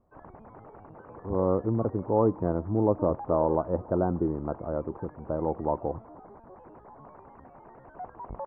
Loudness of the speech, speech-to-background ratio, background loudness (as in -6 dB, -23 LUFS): -28.5 LUFS, 17.5 dB, -46.0 LUFS